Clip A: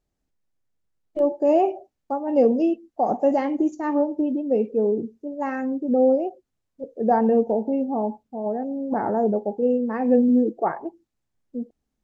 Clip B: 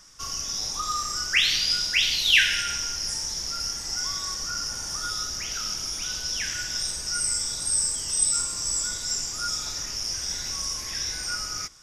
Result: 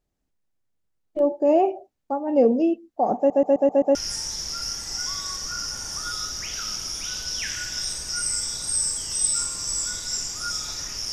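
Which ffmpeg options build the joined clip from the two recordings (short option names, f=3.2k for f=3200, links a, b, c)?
-filter_complex "[0:a]apad=whole_dur=11.12,atrim=end=11.12,asplit=6[a][b][c][d][e][f];[a]atrim=end=3.302[g];[b]atrim=start=3.168:end=3.302[h];[c]atrim=start=3.168:end=3.302[i];[d]atrim=start=3.168:end=3.302[j];[e]atrim=start=3.168:end=3.302[k];[f]atrim=start=3.168:end=3.302[l];[1:a]atrim=start=2.928:end=10.1[m];[g][h]acrossfade=d=0.004:c1=hsin:c2=hsin[n];[n][i]acrossfade=d=0.004:c1=hsin:c2=hsin[o];[o][j]acrossfade=d=0.004:c1=hsin:c2=hsin[p];[p][k]acrossfade=d=0.004:c1=hsin:c2=hsin[q];[q][l]acrossfade=d=0.004:c1=hsin:c2=hsin[r];[r][m]acrossfade=d=0.004:c1=hsin:c2=hsin"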